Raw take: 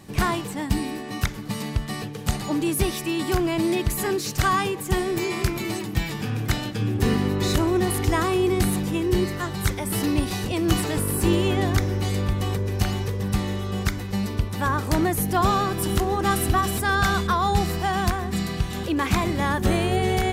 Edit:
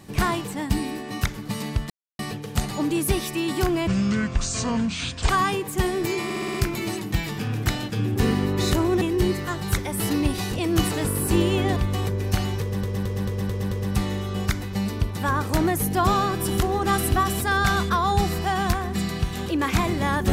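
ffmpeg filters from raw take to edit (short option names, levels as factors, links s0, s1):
-filter_complex "[0:a]asplit=16[s0][s1][s2][s3][s4][s5][s6][s7][s8][s9][s10][s11][s12][s13][s14][s15];[s0]atrim=end=1.9,asetpts=PTS-STARTPTS,afade=t=out:st=1.896:d=0.004:c=hsin,apad=pad_dur=0.29[s16];[s1]atrim=start=1.9:end=3.584,asetpts=PTS-STARTPTS,afade=t=in:d=0.004:c=hsin[s17];[s2]atrim=start=3.58:end=4.42,asetpts=PTS-STARTPTS,asetrate=26019,aresample=44100,atrim=end_sample=62786,asetpts=PTS-STARTPTS[s18];[s3]atrim=start=4.416:end=5.432[s19];[s4]atrim=start=5.368:end=5.432[s20];[s5]atrim=start=5.368:end=5.432[s21];[s6]atrim=start=5.368:end=5.432[s22];[s7]atrim=start=5.368:end=5.432[s23];[s8]atrim=start=5.368:end=7.842[s24];[s9]atrim=start=8.938:end=11.692[s25];[s10]atrim=start=12.238:end=13.312[s26];[s11]atrim=start=13.088:end=13.312[s27];[s12]atrim=start=13.088:end=13.312[s28];[s13]atrim=start=13.088:end=13.312[s29];[s14]atrim=start=13.088:end=13.312[s30];[s15]atrim=start=13.088[s31];[s16][s17]concat=n=2:v=0:a=1[s32];[s32][s18]acrossfade=d=0.004:c1=hsin:c2=hsin[s33];[s33][s19]acrossfade=d=0.004:c1=hsin:c2=hsin[s34];[s34][s20]acrossfade=d=0.004:c1=hsin:c2=hsin[s35];[s35][s21]acrossfade=d=0.004:c1=hsin:c2=hsin[s36];[s36][s22]acrossfade=d=0.004:c1=hsin:c2=hsin[s37];[s37][s23]acrossfade=d=0.004:c1=hsin:c2=hsin[s38];[s38][s24]acrossfade=d=0.004:c1=hsin:c2=hsin[s39];[s39][s25]acrossfade=d=0.004:c1=hsin:c2=hsin[s40];[s40][s26]acrossfade=d=0.004:c1=hsin:c2=hsin[s41];[s41][s27]acrossfade=d=0.004:c1=hsin:c2=hsin[s42];[s42][s28]acrossfade=d=0.004:c1=hsin:c2=hsin[s43];[s43][s29]acrossfade=d=0.004:c1=hsin:c2=hsin[s44];[s44][s30]acrossfade=d=0.004:c1=hsin:c2=hsin[s45];[s45][s31]acrossfade=d=0.004:c1=hsin:c2=hsin"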